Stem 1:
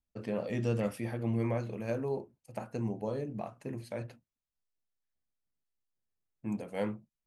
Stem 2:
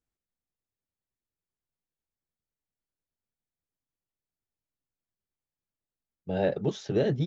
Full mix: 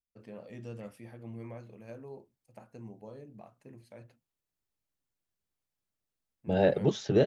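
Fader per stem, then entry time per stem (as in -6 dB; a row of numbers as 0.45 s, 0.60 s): -12.0 dB, +2.0 dB; 0.00 s, 0.20 s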